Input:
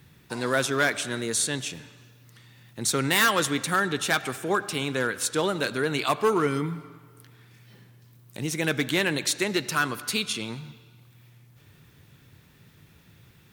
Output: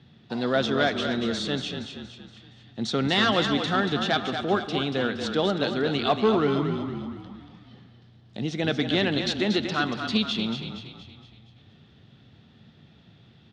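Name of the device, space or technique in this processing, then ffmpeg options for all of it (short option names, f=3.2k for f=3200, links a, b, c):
frequency-shifting delay pedal into a guitar cabinet: -filter_complex "[0:a]asplit=7[a][b][c][d][e][f][g];[b]adelay=234,afreqshift=-30,volume=-7.5dB[h];[c]adelay=468,afreqshift=-60,volume=-13.9dB[i];[d]adelay=702,afreqshift=-90,volume=-20.3dB[j];[e]adelay=936,afreqshift=-120,volume=-26.6dB[k];[f]adelay=1170,afreqshift=-150,volume=-33dB[l];[g]adelay=1404,afreqshift=-180,volume=-39.4dB[m];[a][h][i][j][k][l][m]amix=inputs=7:normalize=0,highpass=79,equalizer=f=220:t=q:w=4:g=9,equalizer=f=720:t=q:w=4:g=7,equalizer=f=1k:t=q:w=4:g=-6,equalizer=f=1.6k:t=q:w=4:g=-4,equalizer=f=2.3k:t=q:w=4:g=-7,equalizer=f=3.4k:t=q:w=4:g=5,lowpass=f=4.5k:w=0.5412,lowpass=f=4.5k:w=1.3066"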